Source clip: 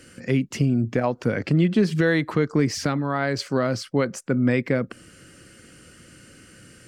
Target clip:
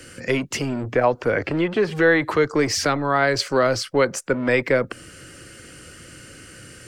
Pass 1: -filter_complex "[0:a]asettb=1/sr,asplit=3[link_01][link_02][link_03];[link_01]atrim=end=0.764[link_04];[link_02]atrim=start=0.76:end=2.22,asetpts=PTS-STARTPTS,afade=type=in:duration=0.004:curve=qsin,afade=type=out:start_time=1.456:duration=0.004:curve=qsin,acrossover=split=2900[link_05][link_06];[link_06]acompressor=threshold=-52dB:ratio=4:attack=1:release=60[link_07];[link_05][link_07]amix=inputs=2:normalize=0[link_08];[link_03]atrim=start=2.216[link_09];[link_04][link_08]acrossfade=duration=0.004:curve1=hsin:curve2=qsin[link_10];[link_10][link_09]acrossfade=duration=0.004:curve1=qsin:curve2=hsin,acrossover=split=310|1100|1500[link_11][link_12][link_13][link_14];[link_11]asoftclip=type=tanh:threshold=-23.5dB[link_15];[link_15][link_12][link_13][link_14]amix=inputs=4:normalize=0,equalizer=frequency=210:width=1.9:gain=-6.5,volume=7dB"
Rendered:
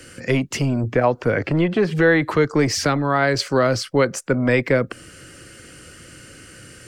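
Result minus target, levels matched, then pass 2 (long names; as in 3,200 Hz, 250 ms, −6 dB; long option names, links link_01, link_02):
soft clipping: distortion −7 dB
-filter_complex "[0:a]asettb=1/sr,asplit=3[link_01][link_02][link_03];[link_01]atrim=end=0.764[link_04];[link_02]atrim=start=0.76:end=2.22,asetpts=PTS-STARTPTS,afade=type=in:duration=0.004:curve=qsin,afade=type=out:start_time=1.456:duration=0.004:curve=qsin,acrossover=split=2900[link_05][link_06];[link_06]acompressor=threshold=-52dB:ratio=4:attack=1:release=60[link_07];[link_05][link_07]amix=inputs=2:normalize=0[link_08];[link_03]atrim=start=2.216[link_09];[link_04][link_08]acrossfade=duration=0.004:curve1=hsin:curve2=qsin[link_10];[link_10][link_09]acrossfade=duration=0.004:curve1=qsin:curve2=hsin,acrossover=split=310|1100|1500[link_11][link_12][link_13][link_14];[link_11]asoftclip=type=tanh:threshold=-34.5dB[link_15];[link_15][link_12][link_13][link_14]amix=inputs=4:normalize=0,equalizer=frequency=210:width=1.9:gain=-6.5,volume=7dB"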